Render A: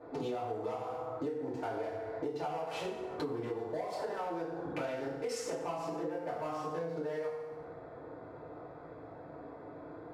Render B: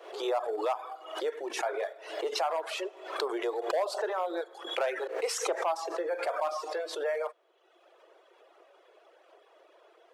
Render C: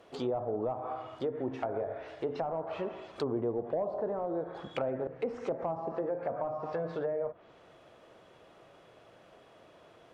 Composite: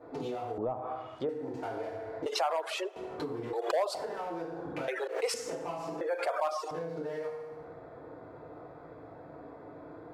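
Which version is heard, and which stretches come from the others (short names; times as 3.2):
A
0.58–1.29 from C
2.26–2.96 from B
3.53–3.95 from B
4.88–5.34 from B
6.01–6.71 from B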